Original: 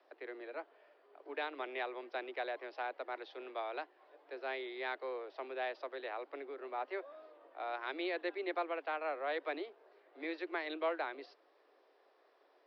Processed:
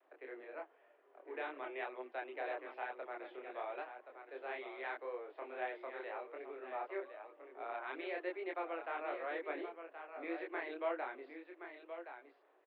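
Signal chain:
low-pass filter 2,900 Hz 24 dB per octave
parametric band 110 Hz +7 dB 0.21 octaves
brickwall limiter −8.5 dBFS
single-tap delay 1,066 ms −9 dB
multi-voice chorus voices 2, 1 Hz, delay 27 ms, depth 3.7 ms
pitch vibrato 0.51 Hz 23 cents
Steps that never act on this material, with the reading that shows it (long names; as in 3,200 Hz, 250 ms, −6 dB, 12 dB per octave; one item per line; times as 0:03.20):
parametric band 110 Hz: nothing at its input below 240 Hz
brickwall limiter −8.5 dBFS: peak of its input −24.5 dBFS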